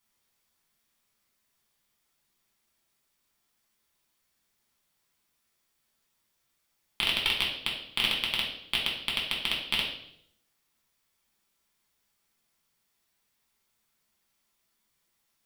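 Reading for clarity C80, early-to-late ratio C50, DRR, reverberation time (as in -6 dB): 8.5 dB, 4.5 dB, -3.0 dB, 0.70 s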